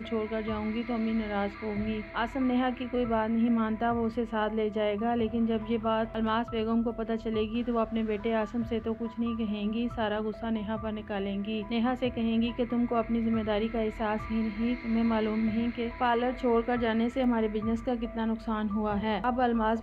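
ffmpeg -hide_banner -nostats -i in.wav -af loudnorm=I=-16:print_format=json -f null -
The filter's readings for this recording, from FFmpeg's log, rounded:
"input_i" : "-29.8",
"input_tp" : "-14.5",
"input_lra" : "2.4",
"input_thresh" : "-39.8",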